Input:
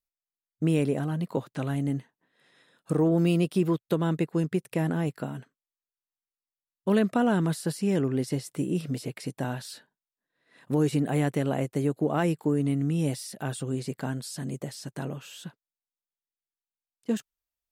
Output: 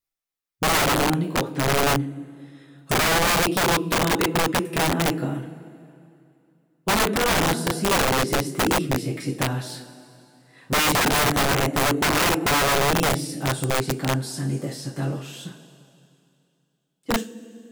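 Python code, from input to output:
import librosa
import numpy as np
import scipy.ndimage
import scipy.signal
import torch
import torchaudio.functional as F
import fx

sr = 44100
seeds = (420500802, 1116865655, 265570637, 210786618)

y = fx.dynamic_eq(x, sr, hz=310.0, q=4.2, threshold_db=-42.0, ratio=4.0, max_db=7)
y = fx.rev_double_slope(y, sr, seeds[0], early_s=0.29, late_s=2.6, knee_db=-18, drr_db=-4.5)
y = (np.mod(10.0 ** (15.0 / 20.0) * y + 1.0, 2.0) - 1.0) / 10.0 ** (15.0 / 20.0)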